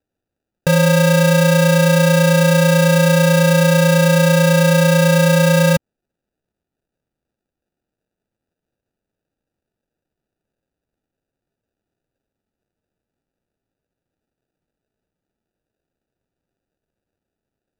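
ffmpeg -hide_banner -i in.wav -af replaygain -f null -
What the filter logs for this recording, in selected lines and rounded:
track_gain = -2.4 dB
track_peak = 0.347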